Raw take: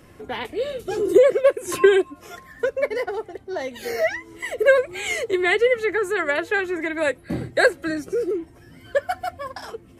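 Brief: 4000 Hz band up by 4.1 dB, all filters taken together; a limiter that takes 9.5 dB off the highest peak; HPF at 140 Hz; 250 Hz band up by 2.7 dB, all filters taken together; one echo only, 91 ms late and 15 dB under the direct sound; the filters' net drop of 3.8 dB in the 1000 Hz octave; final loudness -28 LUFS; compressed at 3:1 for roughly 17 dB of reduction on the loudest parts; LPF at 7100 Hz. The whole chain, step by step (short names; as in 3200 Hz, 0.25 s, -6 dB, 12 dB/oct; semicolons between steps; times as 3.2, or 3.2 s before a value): HPF 140 Hz; LPF 7100 Hz; bell 250 Hz +6 dB; bell 1000 Hz -6.5 dB; bell 4000 Hz +6 dB; compressor 3:1, threshold -33 dBFS; limiter -26.5 dBFS; echo 91 ms -15 dB; gain +7.5 dB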